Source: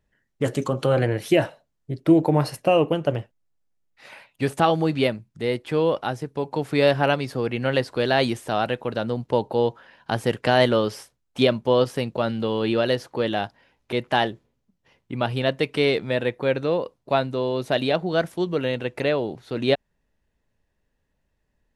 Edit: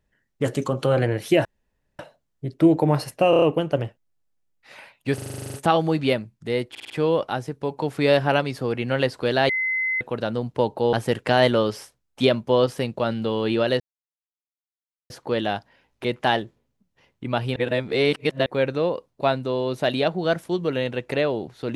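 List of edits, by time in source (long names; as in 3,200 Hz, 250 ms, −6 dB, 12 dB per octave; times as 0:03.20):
0:01.45: splice in room tone 0.54 s
0:02.76: stutter 0.03 s, 5 plays
0:04.48: stutter 0.04 s, 11 plays
0:05.64: stutter 0.05 s, 5 plays
0:08.23–0:08.75: beep over 2,050 Hz −21 dBFS
0:09.67–0:10.11: remove
0:12.98: splice in silence 1.30 s
0:15.44–0:16.34: reverse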